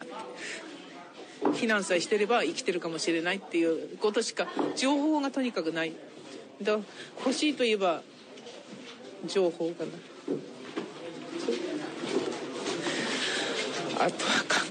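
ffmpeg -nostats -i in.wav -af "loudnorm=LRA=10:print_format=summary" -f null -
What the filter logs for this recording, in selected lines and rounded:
Input Integrated:    -29.9 LUFS
Input True Peak:     -13.0 dBTP
Input LRA:             5.4 LU
Input Threshold:     -40.5 LUFS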